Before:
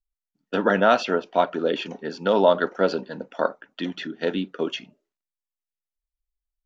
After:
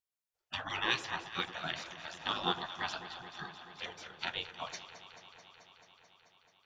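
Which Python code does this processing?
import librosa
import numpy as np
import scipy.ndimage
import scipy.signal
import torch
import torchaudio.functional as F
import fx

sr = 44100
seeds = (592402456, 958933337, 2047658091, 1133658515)

y = fx.spec_gate(x, sr, threshold_db=-20, keep='weak')
y = fx.echo_alternate(y, sr, ms=109, hz=970.0, feedback_pct=88, wet_db=-12.0)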